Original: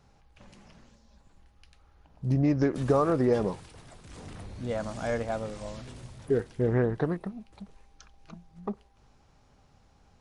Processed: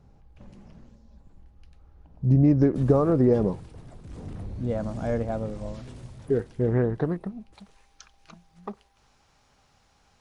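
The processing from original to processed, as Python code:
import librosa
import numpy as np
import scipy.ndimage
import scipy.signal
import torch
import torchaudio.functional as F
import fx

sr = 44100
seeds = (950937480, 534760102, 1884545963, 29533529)

y = fx.tilt_shelf(x, sr, db=fx.steps((0.0, 7.5), (5.73, 3.0), (7.53, -5.5)), hz=720.0)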